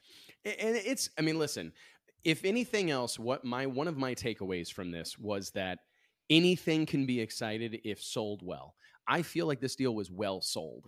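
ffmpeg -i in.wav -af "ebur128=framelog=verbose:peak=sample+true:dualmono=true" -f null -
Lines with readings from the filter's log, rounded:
Integrated loudness:
  I:         -30.2 LUFS
  Threshold: -40.6 LUFS
Loudness range:
  LRA:         3.4 LU
  Threshold: -50.4 LUFS
  LRA low:   -32.5 LUFS
  LRA high:  -29.1 LUFS
Sample peak:
  Peak:      -11.3 dBFS
True peak:
  Peak:      -11.2 dBFS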